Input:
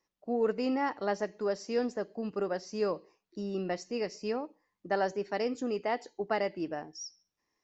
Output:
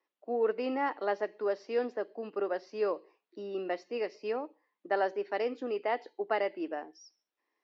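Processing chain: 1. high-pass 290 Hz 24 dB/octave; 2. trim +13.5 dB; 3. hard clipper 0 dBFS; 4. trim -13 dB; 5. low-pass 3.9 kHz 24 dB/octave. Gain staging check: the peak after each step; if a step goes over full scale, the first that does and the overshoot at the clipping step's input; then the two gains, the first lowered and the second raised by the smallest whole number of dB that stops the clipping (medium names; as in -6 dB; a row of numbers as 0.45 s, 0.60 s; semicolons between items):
-17.5 dBFS, -4.0 dBFS, -4.0 dBFS, -17.0 dBFS, -17.0 dBFS; nothing clips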